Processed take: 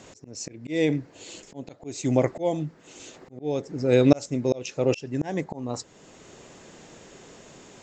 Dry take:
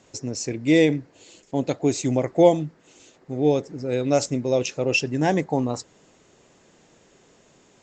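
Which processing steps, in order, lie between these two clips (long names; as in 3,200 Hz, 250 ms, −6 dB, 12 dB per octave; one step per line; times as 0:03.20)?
volume swells 768 ms
level +8.5 dB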